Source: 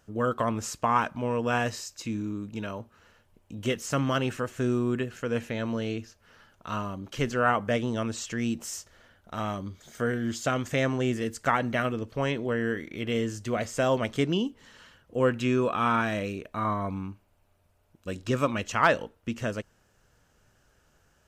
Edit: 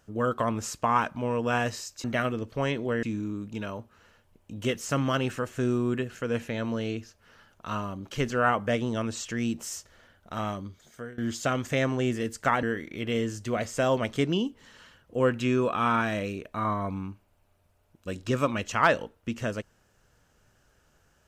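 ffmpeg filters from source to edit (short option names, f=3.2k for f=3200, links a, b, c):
-filter_complex "[0:a]asplit=5[a][b][c][d][e];[a]atrim=end=2.042[f];[b]atrim=start=11.638:end=12.632[g];[c]atrim=start=2.038:end=10.19,asetpts=PTS-STARTPTS,afade=t=out:st=7.452:d=0.7:silence=0.0944061[h];[d]atrim=start=10.19:end=11.642,asetpts=PTS-STARTPTS,afade=t=in:d=0.004:c=hsin:silence=0.0944061[i];[e]atrim=start=12.628[j];[f][g]acrossfade=d=0.004:c1=hsin:c2=hsin[k];[h][i]concat=n=2:v=0:a=1[l];[k][l]acrossfade=d=0.004:c1=hsin:c2=hsin[m];[m][j]acrossfade=d=0.004:c1=hsin:c2=hsin"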